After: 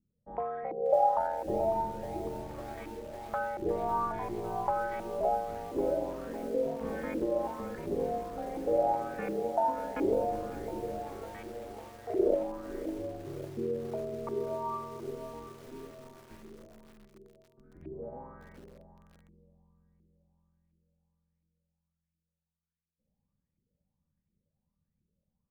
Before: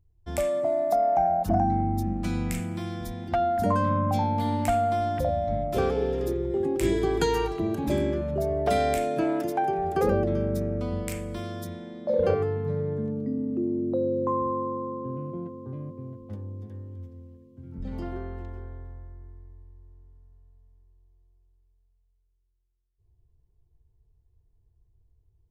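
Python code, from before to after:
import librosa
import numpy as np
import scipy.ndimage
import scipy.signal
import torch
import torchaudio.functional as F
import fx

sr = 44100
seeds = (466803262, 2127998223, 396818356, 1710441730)

y = scipy.signal.sosfilt(scipy.signal.butter(2, 4000.0, 'lowpass', fs=sr, output='sos'), x)
y = fx.low_shelf(y, sr, hz=200.0, db=-7.5)
y = fx.cheby_harmonics(y, sr, harmonics=(2, 3), levels_db=(-27, -29), full_scale_db=-13.0)
y = y * np.sin(2.0 * np.pi * 120.0 * np.arange(len(y)) / sr)
y = fx.filter_lfo_lowpass(y, sr, shape='saw_up', hz=1.4, low_hz=320.0, high_hz=2400.0, q=5.5)
y = fx.echo_crushed(y, sr, ms=552, feedback_pct=80, bits=6, wet_db=-14.5)
y = y * 10.0 ** (-7.5 / 20.0)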